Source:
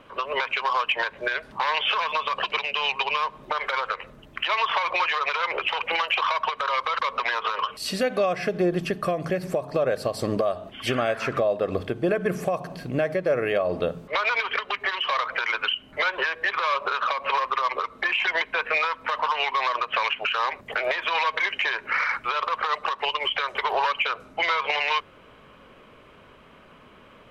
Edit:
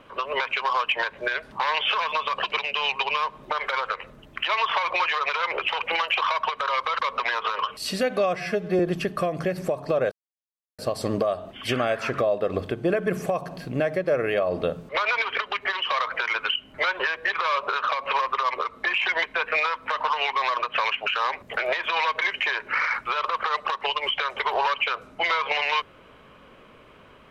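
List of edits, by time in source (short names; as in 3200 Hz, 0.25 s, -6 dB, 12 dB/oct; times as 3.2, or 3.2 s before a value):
8.36–8.65 stretch 1.5×
9.97 insert silence 0.67 s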